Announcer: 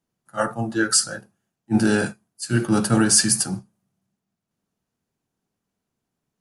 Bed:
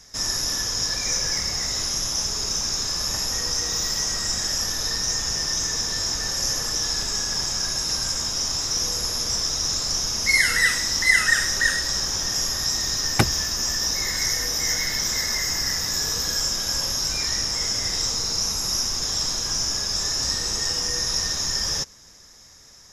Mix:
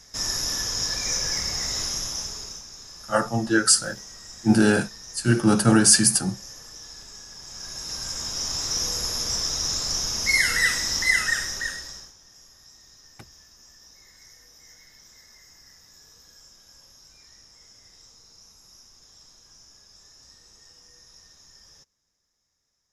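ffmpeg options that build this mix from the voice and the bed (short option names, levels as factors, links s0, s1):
-filter_complex "[0:a]adelay=2750,volume=1.12[s0];[1:a]volume=4.73,afade=t=out:st=1.81:d=0.84:silence=0.16788,afade=t=in:st=7.41:d=1.3:silence=0.16788,afade=t=out:st=10.94:d=1.2:silence=0.0530884[s1];[s0][s1]amix=inputs=2:normalize=0"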